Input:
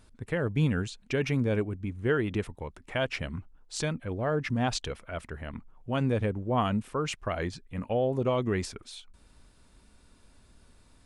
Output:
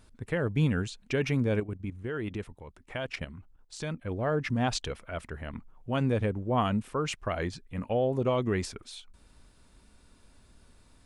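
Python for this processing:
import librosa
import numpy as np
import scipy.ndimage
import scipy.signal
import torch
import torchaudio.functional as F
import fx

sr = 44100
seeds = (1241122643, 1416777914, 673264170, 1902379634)

y = fx.level_steps(x, sr, step_db=11, at=(1.6, 4.05))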